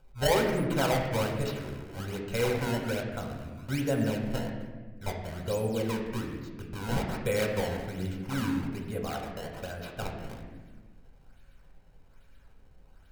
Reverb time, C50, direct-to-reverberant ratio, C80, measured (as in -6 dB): 1.3 s, 4.5 dB, 1.0 dB, 6.5 dB